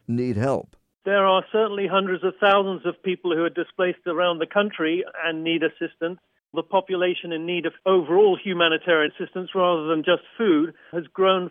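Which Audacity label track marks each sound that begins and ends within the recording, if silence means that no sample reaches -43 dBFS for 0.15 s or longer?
1.060000	6.160000	sound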